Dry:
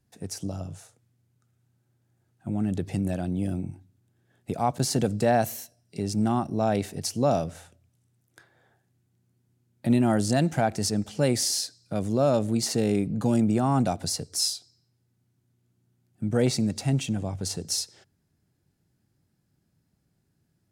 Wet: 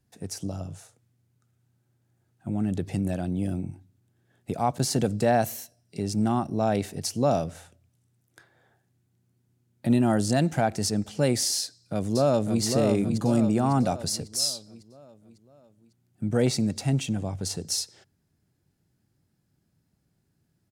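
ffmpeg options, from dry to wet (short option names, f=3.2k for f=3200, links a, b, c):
-filter_complex "[0:a]asettb=1/sr,asplit=3[a][b][c];[a]atrim=end=9.884[d];[b]atrim=start=9.88:end=10.28,asetpts=PTS-STARTPTS,afade=t=in:d=0.004:c=qsin,afade=t=out:st=0.396:d=0.004:c=qsin,bandreject=f=2.2k:w=8.1[e];[c]atrim=start=10.276[f];[d][e]acrossfade=d=0.004:c1=hsin:c2=qsin[g];[g][f]acrossfade=d=0.004:c1=qsin:c2=hsin,asplit=2[h][i];[i]afade=t=in:st=11.6:d=0.01,afade=t=out:st=12.62:d=0.01,aecho=0:1:550|1100|1650|2200|2750|3300:0.595662|0.297831|0.148916|0.0744578|0.0372289|0.0186144[j];[h][j]amix=inputs=2:normalize=0"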